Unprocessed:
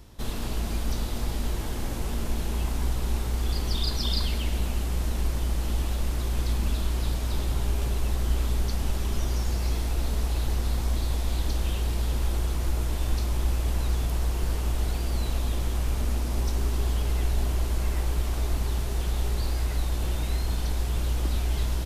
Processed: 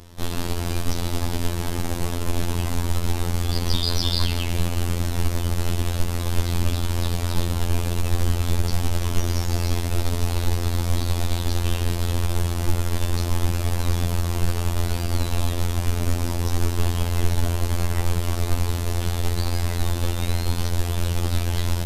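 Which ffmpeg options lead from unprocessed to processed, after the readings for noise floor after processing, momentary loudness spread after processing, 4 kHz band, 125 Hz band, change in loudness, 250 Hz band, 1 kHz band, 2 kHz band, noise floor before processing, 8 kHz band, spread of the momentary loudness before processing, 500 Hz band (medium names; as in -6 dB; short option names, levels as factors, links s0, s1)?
-26 dBFS, 3 LU, +6.0 dB, +5.5 dB, +4.0 dB, +6.5 dB, +6.0 dB, +6.0 dB, -30 dBFS, +6.0 dB, 3 LU, +6.0 dB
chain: -af "aeval=exprs='0.237*(cos(1*acos(clip(val(0)/0.237,-1,1)))-cos(1*PI/2))+0.0299*(cos(4*acos(clip(val(0)/0.237,-1,1)))-cos(4*PI/2))':c=same,afftfilt=real='hypot(re,im)*cos(PI*b)':imag='0':win_size=2048:overlap=0.75,volume=2.82"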